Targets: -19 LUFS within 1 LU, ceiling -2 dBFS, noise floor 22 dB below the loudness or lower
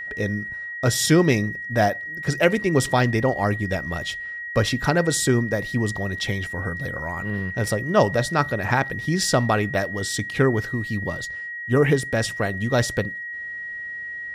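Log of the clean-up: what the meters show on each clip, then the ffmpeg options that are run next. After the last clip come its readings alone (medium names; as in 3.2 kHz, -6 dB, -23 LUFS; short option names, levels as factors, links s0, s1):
steady tone 1.9 kHz; tone level -30 dBFS; loudness -23.0 LUFS; peak level -5.0 dBFS; loudness target -19.0 LUFS
-> -af "bandreject=f=1900:w=30"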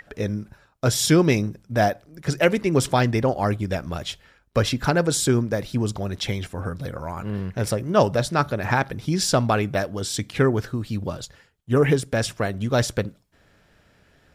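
steady tone not found; loudness -23.0 LUFS; peak level -5.0 dBFS; loudness target -19.0 LUFS
-> -af "volume=1.58,alimiter=limit=0.794:level=0:latency=1"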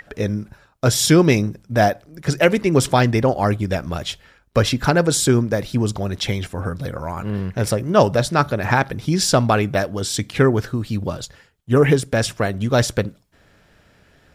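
loudness -19.5 LUFS; peak level -2.0 dBFS; noise floor -56 dBFS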